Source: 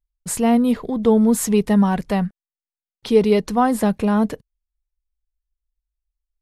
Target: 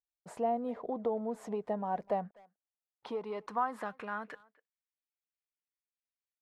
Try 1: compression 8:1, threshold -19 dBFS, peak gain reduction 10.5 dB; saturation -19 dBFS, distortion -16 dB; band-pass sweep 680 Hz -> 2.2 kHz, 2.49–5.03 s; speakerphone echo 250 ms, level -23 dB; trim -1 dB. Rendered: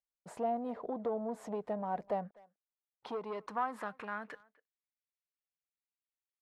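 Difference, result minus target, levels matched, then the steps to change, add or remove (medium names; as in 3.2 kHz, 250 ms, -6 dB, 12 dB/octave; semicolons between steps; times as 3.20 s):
saturation: distortion +15 dB
change: saturation -9.5 dBFS, distortion -31 dB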